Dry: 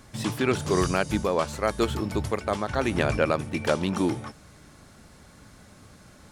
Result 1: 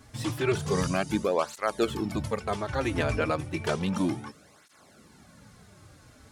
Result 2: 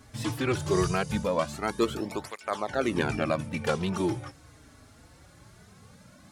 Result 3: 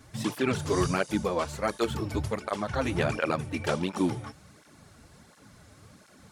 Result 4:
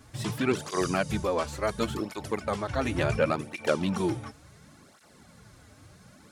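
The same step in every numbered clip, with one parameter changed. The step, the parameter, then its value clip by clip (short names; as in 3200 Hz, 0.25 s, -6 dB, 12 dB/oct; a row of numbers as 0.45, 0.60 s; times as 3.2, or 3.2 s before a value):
tape flanging out of phase, nulls at: 0.32, 0.21, 1.4, 0.7 Hz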